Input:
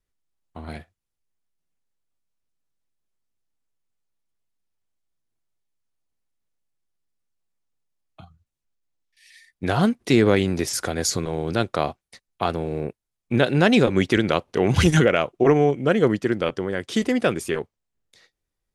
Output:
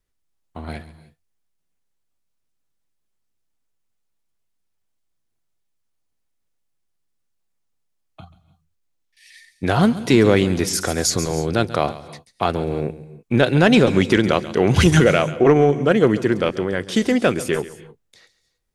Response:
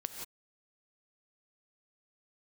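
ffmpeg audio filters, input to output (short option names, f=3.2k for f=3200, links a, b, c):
-filter_complex "[0:a]asplit=2[a][b];[b]bass=f=250:g=6,treble=f=4k:g=9[c];[1:a]atrim=start_sample=2205,adelay=137[d];[c][d]afir=irnorm=-1:irlink=0,volume=-16.5dB[e];[a][e]amix=inputs=2:normalize=0,acontrast=22,volume=-1dB"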